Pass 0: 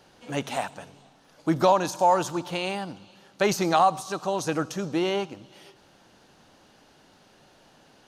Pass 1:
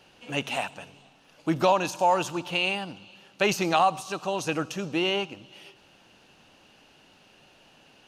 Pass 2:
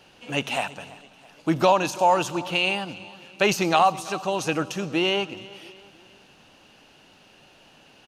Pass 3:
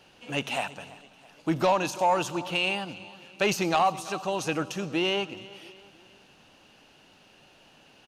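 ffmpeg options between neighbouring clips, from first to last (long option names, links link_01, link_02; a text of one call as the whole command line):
ffmpeg -i in.wav -af "equalizer=frequency=2700:width=3.6:gain=11.5,volume=-2dB" out.wav
ffmpeg -i in.wav -af "aecho=1:1:332|664|996:0.1|0.046|0.0212,volume=3dB" out.wav
ffmpeg -i in.wav -af "asoftclip=type=tanh:threshold=-11dB,volume=-3dB" out.wav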